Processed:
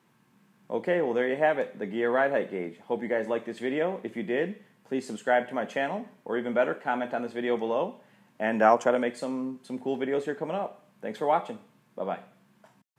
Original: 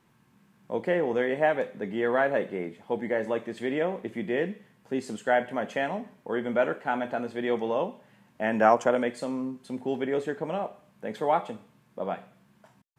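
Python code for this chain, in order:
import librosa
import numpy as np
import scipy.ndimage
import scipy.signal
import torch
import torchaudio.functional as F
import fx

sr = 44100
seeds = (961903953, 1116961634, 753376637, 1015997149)

y = scipy.signal.sosfilt(scipy.signal.butter(2, 140.0, 'highpass', fs=sr, output='sos'), x)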